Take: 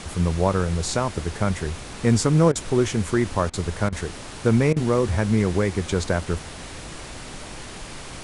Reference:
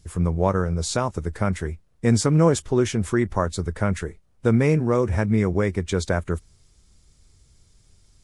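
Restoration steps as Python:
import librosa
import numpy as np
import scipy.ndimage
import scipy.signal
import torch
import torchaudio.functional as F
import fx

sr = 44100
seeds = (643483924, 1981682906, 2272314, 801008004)

y = fx.fix_interpolate(x, sr, at_s=(2.52, 3.5, 3.89, 4.73), length_ms=33.0)
y = fx.noise_reduce(y, sr, print_start_s=7.63, print_end_s=8.13, reduce_db=19.0)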